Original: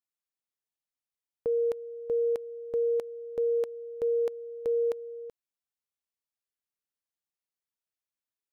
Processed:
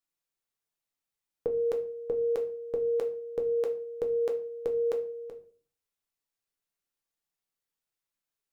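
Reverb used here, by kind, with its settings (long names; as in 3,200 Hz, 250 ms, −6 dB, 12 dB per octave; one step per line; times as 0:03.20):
rectangular room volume 34 cubic metres, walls mixed, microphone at 0.39 metres
level +2 dB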